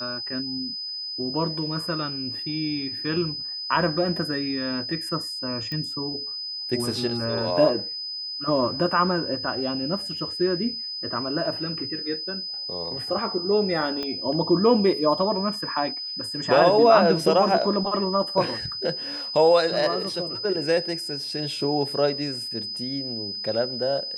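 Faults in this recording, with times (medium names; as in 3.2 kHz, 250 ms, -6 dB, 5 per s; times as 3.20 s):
whine 5 kHz -30 dBFS
5.72 s: pop -19 dBFS
14.03 s: pop -17 dBFS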